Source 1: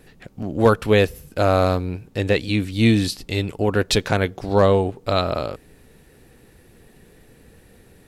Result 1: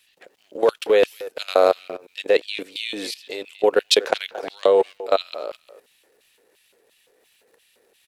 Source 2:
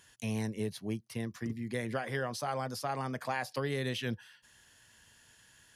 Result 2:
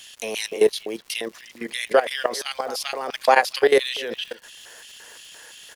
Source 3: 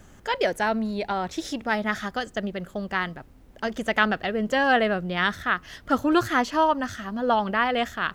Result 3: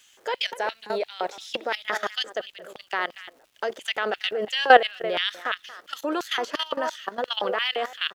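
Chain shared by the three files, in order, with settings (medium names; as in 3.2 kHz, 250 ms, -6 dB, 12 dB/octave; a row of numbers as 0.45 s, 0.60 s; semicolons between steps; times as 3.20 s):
speakerphone echo 230 ms, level -13 dB; LFO high-pass square 2.9 Hz 470–3000 Hz; high-pass 54 Hz 6 dB/octave; bass shelf 140 Hz -10 dB; level held to a coarse grid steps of 16 dB; crackle 280 per s -57 dBFS; peak normalisation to -1.5 dBFS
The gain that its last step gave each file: +2.0 dB, +19.0 dB, +6.5 dB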